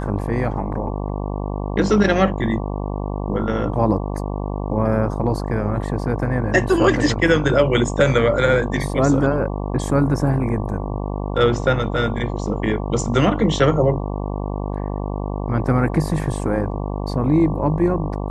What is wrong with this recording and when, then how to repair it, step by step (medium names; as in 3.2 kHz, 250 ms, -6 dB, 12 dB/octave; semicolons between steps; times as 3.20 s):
buzz 50 Hz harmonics 23 -25 dBFS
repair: de-hum 50 Hz, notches 23